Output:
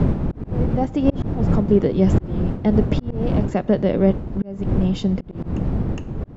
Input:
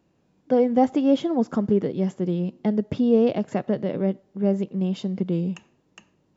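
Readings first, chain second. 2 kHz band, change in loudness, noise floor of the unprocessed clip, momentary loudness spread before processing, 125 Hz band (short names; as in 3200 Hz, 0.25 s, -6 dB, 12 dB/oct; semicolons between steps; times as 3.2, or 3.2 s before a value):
+4.5 dB, +2.5 dB, -67 dBFS, 7 LU, +9.5 dB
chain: opening faded in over 1.61 s; wind noise 190 Hz -19 dBFS; auto swell 0.697 s; gain +7.5 dB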